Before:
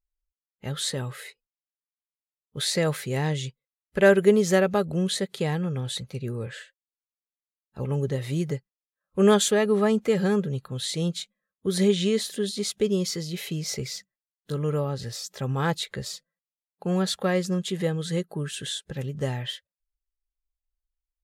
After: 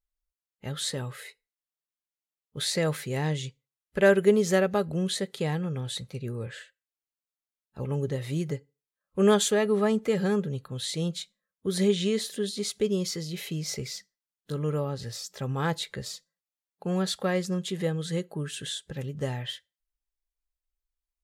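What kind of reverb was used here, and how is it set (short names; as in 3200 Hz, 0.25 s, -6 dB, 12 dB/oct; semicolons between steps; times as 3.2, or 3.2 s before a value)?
FDN reverb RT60 0.31 s, low-frequency decay 0.9×, high-frequency decay 0.85×, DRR 19.5 dB; gain -2.5 dB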